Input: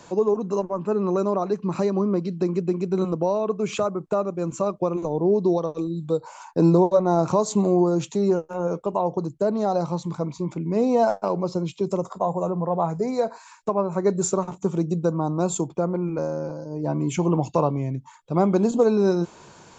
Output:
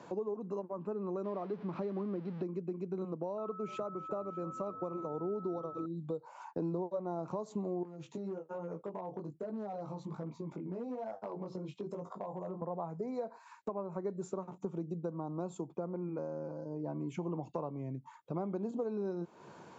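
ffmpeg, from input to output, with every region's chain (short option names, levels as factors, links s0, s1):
-filter_complex "[0:a]asettb=1/sr,asplit=3[s0][s1][s2];[s0]atrim=end=1.244[s3];[s1]atrim=start=1.24:end=2.43,asetpts=PTS-STARTPTS,afade=t=in:d=0.004:c=qsin,afade=t=out:st=1.186:d=0.004:c=qsin,aeval=exprs='val(0)+0.5*0.0282*sgn(val(0))':c=same,lowpass=f=4900:w=0.5412,lowpass=f=4900:w=1.3066[s4];[s2]atrim=start=2.426[s5];[s3][s4]acrossfade=d=0.004:c1=hsin:c2=qsin[s6];[s6][s5]acrossfade=d=0.004:c1=qsin:c2=hsin,asettb=1/sr,asplit=3[s7][s8][s9];[s7]atrim=end=3.384[s10];[s8]atrim=start=3.38:end=5.86,asetpts=PTS-STARTPTS,afade=t=in:d=0.004:c=qsin,afade=t=out:st=2.476:d=0.004:c=qsin,asplit=6[s11][s12][s13][s14][s15][s16];[s12]adelay=300,afreqshift=-60,volume=0.112[s17];[s13]adelay=600,afreqshift=-120,volume=0.0638[s18];[s14]adelay=900,afreqshift=-180,volume=0.0363[s19];[s15]adelay=1200,afreqshift=-240,volume=0.0209[s20];[s16]adelay=1500,afreqshift=-300,volume=0.0119[s21];[s11][s17][s18][s19][s20][s21]amix=inputs=6:normalize=0,atrim=end_sample=109368,aeval=exprs='val(0)+0.0355*sin(2*PI*1300*n/s)':c=same[s22];[s9]atrim=start=5.856[s23];[s10][s22]acrossfade=d=0.004:c1=hsin:c2=qsin[s24];[s24][s23]acrossfade=d=0.004:c1=qsin:c2=hsin,asettb=1/sr,asplit=3[s25][s26][s27];[s25]atrim=end=7.834[s28];[s26]atrim=start=7.83:end=12.62,asetpts=PTS-STARTPTS,afade=t=in:d=0.004:c=qsin,afade=t=out:st=4.786:d=0.004:c=qsin,acompressor=threshold=0.0562:ratio=4:attack=3.2:release=140:knee=1:detection=peak,flanger=delay=18:depth=3.5:speed=1.2,asoftclip=type=hard:threshold=0.0531[s29];[s27]atrim=start=12.616[s30];[s28][s29]acrossfade=d=0.004:c1=hsin:c2=qsin[s31];[s31][s30]acrossfade=d=0.004:c1=qsin:c2=hsin,highpass=150,acompressor=threshold=0.0158:ratio=3,lowpass=f=1300:p=1,volume=0.75"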